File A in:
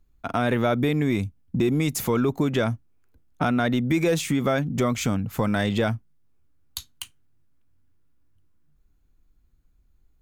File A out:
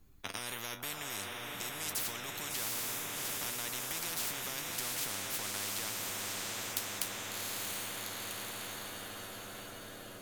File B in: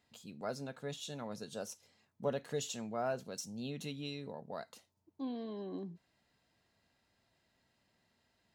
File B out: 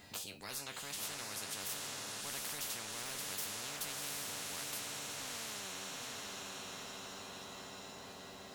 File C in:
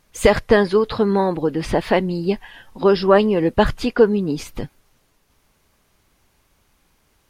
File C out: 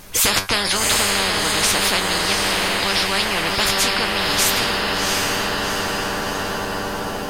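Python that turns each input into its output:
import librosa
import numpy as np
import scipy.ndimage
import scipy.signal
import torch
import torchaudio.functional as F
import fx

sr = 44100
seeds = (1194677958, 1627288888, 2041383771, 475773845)

p1 = fx.high_shelf(x, sr, hz=7500.0, db=5.0)
p2 = fx.comb_fb(p1, sr, f0_hz=97.0, decay_s=0.16, harmonics='all', damping=0.0, mix_pct=80)
p3 = p2 + fx.echo_diffused(p2, sr, ms=744, feedback_pct=56, wet_db=-6.5, dry=0)
p4 = fx.spectral_comp(p3, sr, ratio=10.0)
y = p4 * librosa.db_to_amplitude(1.0)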